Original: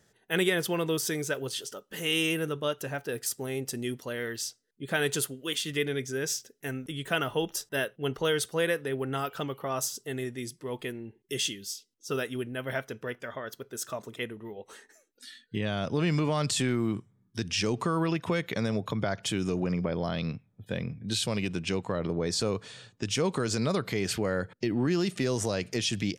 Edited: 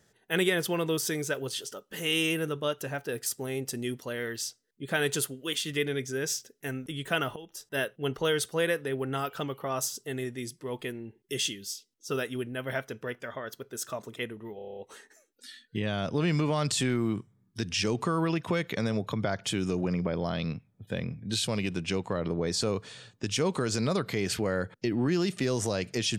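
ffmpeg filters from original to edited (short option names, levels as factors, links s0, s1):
-filter_complex "[0:a]asplit=9[s0][s1][s2][s3][s4][s5][s6][s7][s8];[s0]atrim=end=7.36,asetpts=PTS-STARTPTS,afade=t=out:st=7.356:d=0.004:c=hsin:silence=0.141254[s9];[s1]atrim=start=7.36:end=14.592,asetpts=PTS-STARTPTS,afade=t=in:d=0.43:c=qua:silence=0.141254[s10];[s2]atrim=start=14.558:end=14.592[s11];[s3]atrim=start=14.558:end=14.592[s12];[s4]atrim=start=14.558:end=14.592[s13];[s5]atrim=start=14.558:end=14.592[s14];[s6]atrim=start=14.558:end=14.592[s15];[s7]atrim=start=14.558:end=14.592[s16];[s8]atrim=start=14.558[s17];[s9][s10]concat=n=2:v=0:a=1[s18];[s18][s11]acrossfade=d=0.004:c1=hsin:c2=hsin[s19];[s19][s12]acrossfade=d=0.004:c1=hsin:c2=hsin[s20];[s20][s13]acrossfade=d=0.004:c1=hsin:c2=hsin[s21];[s21][s14]acrossfade=d=0.004:c1=hsin:c2=hsin[s22];[s22][s15]acrossfade=d=0.004:c1=hsin:c2=hsin[s23];[s23][s16]acrossfade=d=0.004:c1=hsin:c2=hsin[s24];[s24][s17]acrossfade=d=0.004:c1=hsin:c2=hsin"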